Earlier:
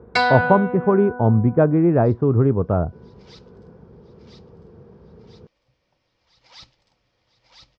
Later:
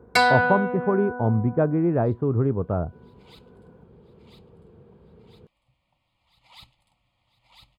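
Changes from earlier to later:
speech -5.5 dB; second sound: add static phaser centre 1.6 kHz, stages 6; master: remove low-pass 5.9 kHz 24 dB/octave

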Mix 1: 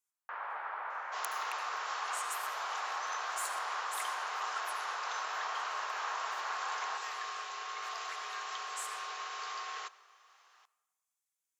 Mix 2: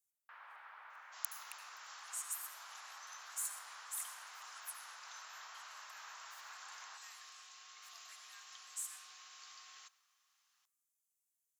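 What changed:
second sound -5.0 dB; master: add differentiator

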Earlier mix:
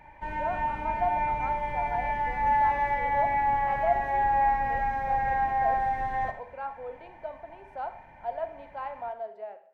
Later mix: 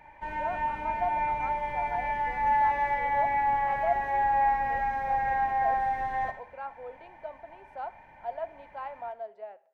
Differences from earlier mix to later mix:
speech: send -9.0 dB; master: add bass shelf 280 Hz -6 dB

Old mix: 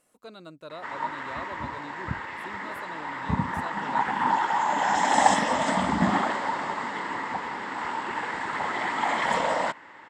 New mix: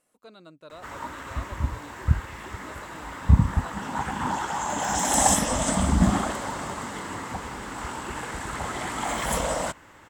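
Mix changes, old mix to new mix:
speech -4.0 dB; background: remove cabinet simulation 210–6100 Hz, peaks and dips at 920 Hz +7 dB, 1.9 kHz +8 dB, 6.1 kHz -8 dB

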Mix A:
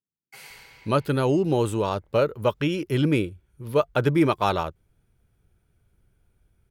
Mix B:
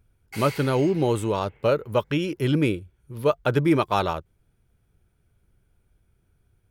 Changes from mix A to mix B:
speech: entry -0.50 s; background +7.5 dB

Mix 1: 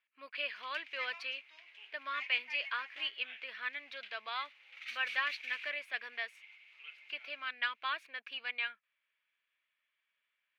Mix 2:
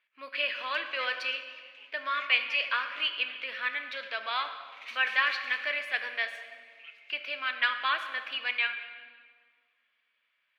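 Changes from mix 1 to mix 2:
speech +5.5 dB; reverb: on, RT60 1.8 s

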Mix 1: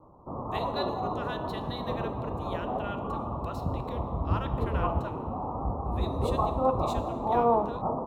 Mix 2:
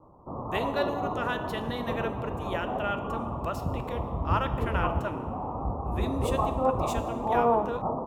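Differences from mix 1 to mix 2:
speech +8.0 dB; master: add peaking EQ 4 kHz -14 dB 0.25 oct

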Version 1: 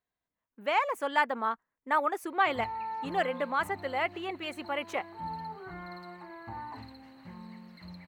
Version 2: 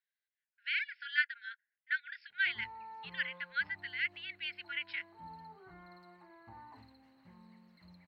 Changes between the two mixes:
speech: add brick-wall FIR band-pass 1.4–5.4 kHz; background -12.0 dB

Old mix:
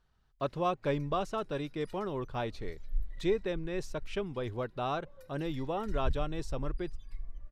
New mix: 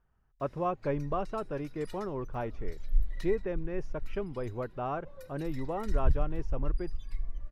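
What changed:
speech: add boxcar filter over 11 samples; background +6.5 dB

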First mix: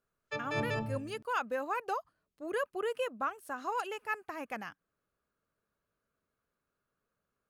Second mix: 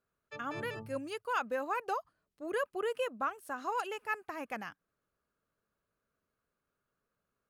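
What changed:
background -8.5 dB; reverb: off

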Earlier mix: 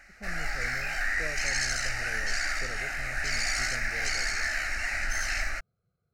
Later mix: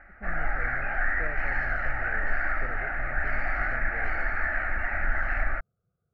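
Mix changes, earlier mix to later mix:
background +6.5 dB; master: add low-pass 1.6 kHz 24 dB/octave

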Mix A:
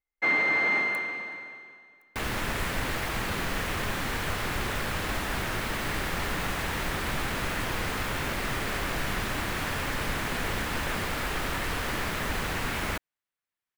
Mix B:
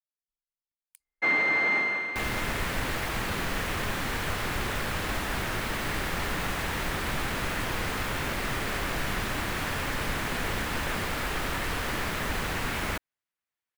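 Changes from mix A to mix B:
speech -6.5 dB; first sound: entry +1.00 s

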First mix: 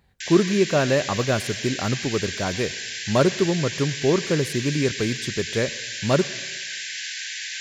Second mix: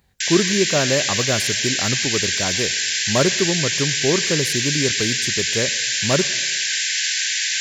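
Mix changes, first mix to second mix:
background +7.5 dB; master: add treble shelf 5.8 kHz +9 dB

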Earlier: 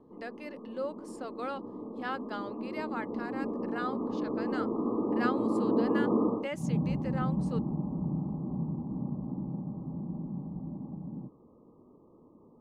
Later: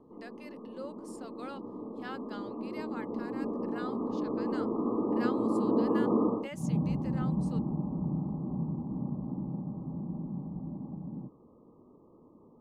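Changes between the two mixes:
speech -8.0 dB; master: add treble shelf 3.8 kHz +10.5 dB

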